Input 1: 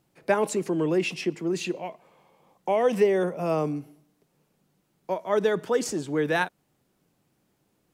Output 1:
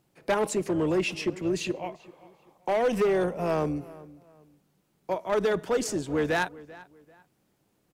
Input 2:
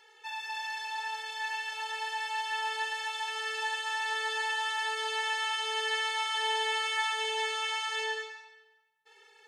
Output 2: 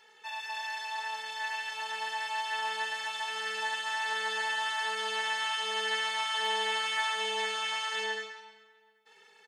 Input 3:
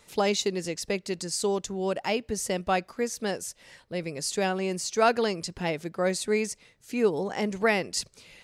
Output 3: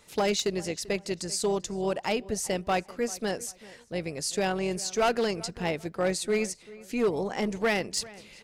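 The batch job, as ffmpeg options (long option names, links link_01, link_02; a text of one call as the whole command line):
ffmpeg -i in.wav -filter_complex "[0:a]tremolo=f=230:d=0.4,asoftclip=type=hard:threshold=-21dB,asplit=2[link_01][link_02];[link_02]adelay=390,lowpass=frequency=3000:poles=1,volume=-19.5dB,asplit=2[link_03][link_04];[link_04]adelay=390,lowpass=frequency=3000:poles=1,volume=0.3[link_05];[link_01][link_03][link_05]amix=inputs=3:normalize=0,volume=1.5dB" out.wav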